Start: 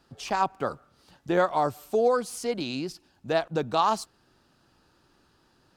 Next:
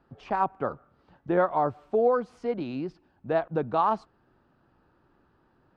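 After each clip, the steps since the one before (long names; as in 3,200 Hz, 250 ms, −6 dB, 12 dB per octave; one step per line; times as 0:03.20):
low-pass filter 1,600 Hz 12 dB per octave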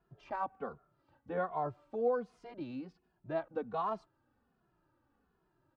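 barber-pole flanger 2.4 ms −1.3 Hz
level −7.5 dB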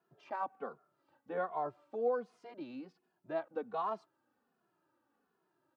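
high-pass filter 250 Hz 12 dB per octave
level −1 dB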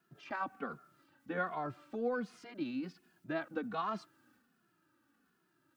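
flat-topped bell 640 Hz −11 dB
transient designer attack +3 dB, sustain +7 dB
level +6.5 dB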